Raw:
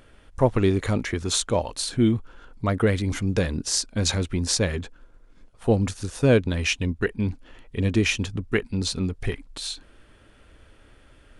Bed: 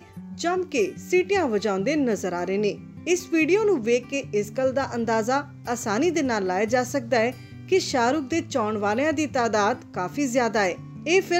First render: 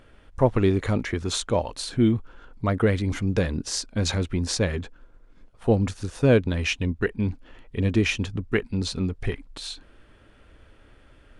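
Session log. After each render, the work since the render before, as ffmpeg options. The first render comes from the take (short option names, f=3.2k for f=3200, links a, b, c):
-af "highshelf=f=5.4k:g=-8.5"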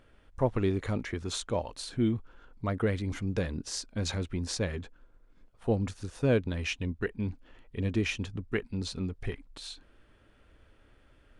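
-af "volume=-7.5dB"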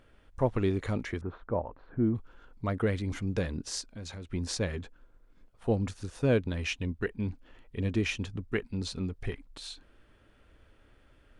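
-filter_complex "[0:a]asettb=1/sr,asplit=3[a][b][c];[a]atrim=end=1.214[d];[b]atrim=start=1.21:end=2.15,asetpts=PTS-STARTPTS,afade=t=in:d=0.004:c=qsin,afade=t=out:st=0.936:d=0.004:c=qsin,lowpass=f=1.5k:w=0.5412,lowpass=f=1.5k:w=1.3066[e];[c]atrim=start=2.146[f];[d][e]acrossfade=d=0.004:c1=hsin:c2=qsin[g];[g][f]acrossfade=d=0.004:c1=qsin:c2=hsin,asettb=1/sr,asplit=3[h][i][j];[h]atrim=end=3.814[k];[i]atrim=start=3.81:end=4.33,asetpts=PTS-STARTPTS,afade=t=in:d=0.004:c=qsin,afade=t=out:st=0.516:d=0.004:c=qsin,acompressor=threshold=-46dB:ratio=2:attack=3.2:release=140:knee=1:detection=peak[l];[j]atrim=start=4.326[m];[k][l]acrossfade=d=0.004:c1=hsin:c2=qsin[n];[n][m]acrossfade=d=0.004:c1=qsin:c2=hsin"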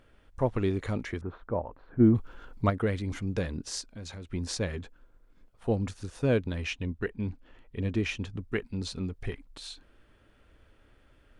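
-filter_complex "[0:a]asplit=3[a][b][c];[a]afade=t=out:st=1.99:d=0.02[d];[b]acontrast=89,afade=t=in:st=1.99:d=0.02,afade=t=out:st=2.69:d=0.02[e];[c]afade=t=in:st=2.69:d=0.02[f];[d][e][f]amix=inputs=3:normalize=0,asettb=1/sr,asplit=3[g][h][i];[g]atrim=end=6.614[j];[h]atrim=start=6.61:end=8.34,asetpts=PTS-STARTPTS,afade=t=in:d=0.004:c=qsin,afade=t=out:st=1.726:d=0.004:c=qsin,highshelf=f=5.3k:g=-5.5[k];[i]atrim=start=8.336[l];[j][k]acrossfade=d=0.004:c1=hsin:c2=qsin[m];[m][l]acrossfade=d=0.004:c1=qsin:c2=hsin"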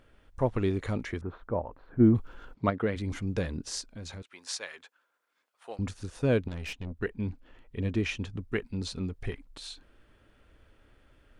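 -filter_complex "[0:a]asplit=3[a][b][c];[a]afade=t=out:st=2.53:d=0.02[d];[b]highpass=130,lowpass=4.3k,afade=t=in:st=2.53:d=0.02,afade=t=out:st=2.95:d=0.02[e];[c]afade=t=in:st=2.95:d=0.02[f];[d][e][f]amix=inputs=3:normalize=0,asettb=1/sr,asplit=3[g][h][i];[g]atrim=end=4.224[j];[h]atrim=start=4.22:end=5.79,asetpts=PTS-STARTPTS,afade=t=in:d=0.004:c=qsin,afade=t=out:st=1.566:d=0.004:c=qsin,highpass=970[k];[i]atrim=start=5.786[l];[j][k]acrossfade=d=0.004:c1=hsin:c2=qsin[m];[m][l]acrossfade=d=0.004:c1=qsin:c2=hsin,asettb=1/sr,asplit=3[n][o][p];[n]atrim=end=6.484[q];[o]atrim=start=6.48:end=6.97,asetpts=PTS-STARTPTS,afade=t=in:d=0.004:c=qsin,afade=t=out:st=0.486:d=0.004:c=qsin,aeval=exprs='(tanh(44.7*val(0)+0.55)-tanh(0.55))/44.7':c=same[r];[p]atrim=start=6.966[s];[q][r]acrossfade=d=0.004:c1=hsin:c2=qsin[t];[t][s]acrossfade=d=0.004:c1=qsin:c2=hsin"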